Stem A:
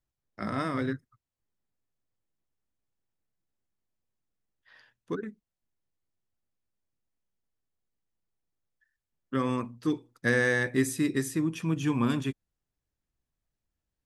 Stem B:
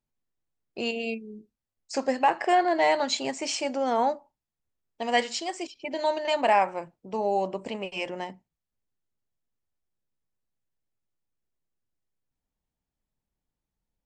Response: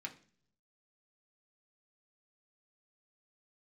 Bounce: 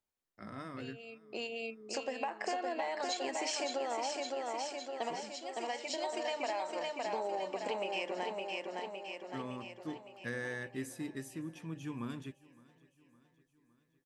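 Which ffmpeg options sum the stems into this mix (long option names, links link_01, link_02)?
-filter_complex "[0:a]volume=-14dB,asplit=3[link_01][link_02][link_03];[link_02]volume=-23dB[link_04];[1:a]highpass=330,acompressor=threshold=-30dB:ratio=6,volume=-1dB,asplit=2[link_05][link_06];[link_06]volume=-4.5dB[link_07];[link_03]apad=whole_len=619707[link_08];[link_05][link_08]sidechaincompress=threshold=-59dB:ratio=4:attack=43:release=1080[link_09];[link_04][link_07]amix=inputs=2:normalize=0,aecho=0:1:561|1122|1683|2244|2805|3366|3927|4488|5049:1|0.58|0.336|0.195|0.113|0.0656|0.0381|0.0221|0.0128[link_10];[link_01][link_09][link_10]amix=inputs=3:normalize=0,acompressor=threshold=-32dB:ratio=6"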